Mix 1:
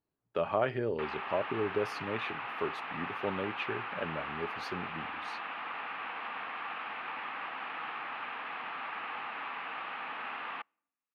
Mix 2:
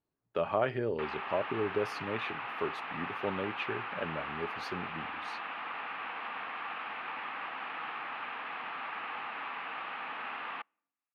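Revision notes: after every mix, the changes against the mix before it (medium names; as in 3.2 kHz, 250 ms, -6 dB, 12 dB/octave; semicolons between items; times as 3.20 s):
no change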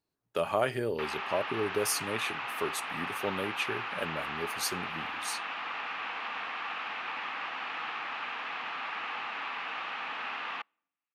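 master: remove distance through air 340 m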